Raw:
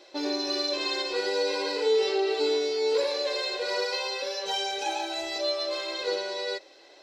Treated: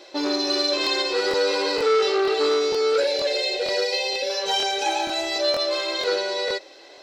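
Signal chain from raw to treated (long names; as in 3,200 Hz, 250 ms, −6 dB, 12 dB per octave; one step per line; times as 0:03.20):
0:02.81–0:04.30: Chebyshev band-stop filter 780–2,000 Hz, order 2
regular buffer underruns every 0.47 s, samples 1,024, repeat, from 0:00.82
saturating transformer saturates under 1,000 Hz
level +7 dB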